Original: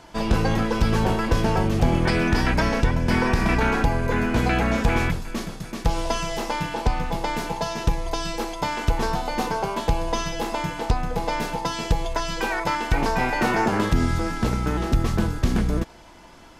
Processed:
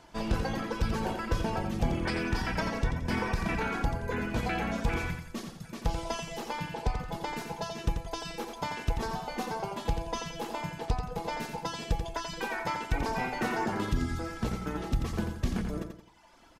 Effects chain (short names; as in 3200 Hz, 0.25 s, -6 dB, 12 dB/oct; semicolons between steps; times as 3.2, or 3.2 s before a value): reverb removal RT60 1.1 s; feedback echo 87 ms, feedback 37%, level -6.5 dB; gain -8 dB